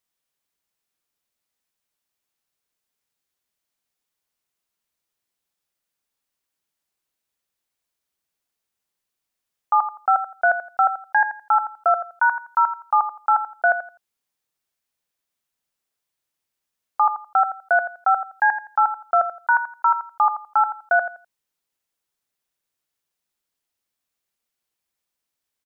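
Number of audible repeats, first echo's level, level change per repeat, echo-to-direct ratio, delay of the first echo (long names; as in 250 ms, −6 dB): 2, −11.0 dB, −13.0 dB, −11.0 dB, 84 ms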